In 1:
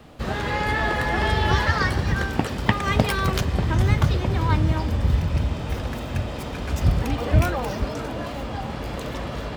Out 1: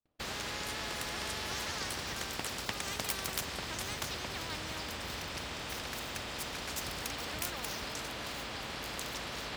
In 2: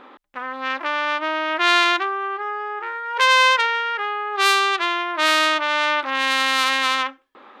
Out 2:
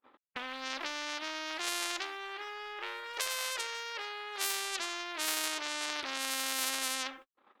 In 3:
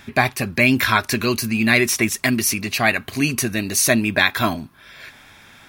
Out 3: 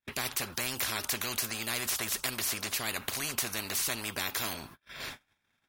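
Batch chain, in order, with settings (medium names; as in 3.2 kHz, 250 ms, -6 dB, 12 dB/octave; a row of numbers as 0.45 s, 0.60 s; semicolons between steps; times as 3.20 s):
gate -41 dBFS, range -56 dB; spectrum-flattening compressor 4:1; peak normalisation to -12 dBFS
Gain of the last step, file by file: -11.0 dB, -11.0 dB, -11.0 dB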